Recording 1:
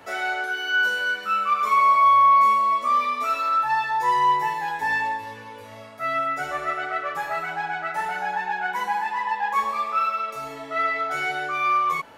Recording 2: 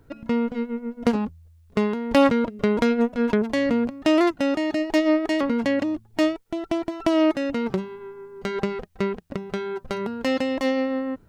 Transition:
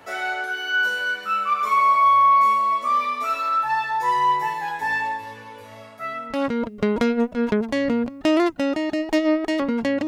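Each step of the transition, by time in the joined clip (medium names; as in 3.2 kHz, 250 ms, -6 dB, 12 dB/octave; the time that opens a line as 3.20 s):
recording 1
6.30 s: go over to recording 2 from 2.11 s, crossfade 0.74 s quadratic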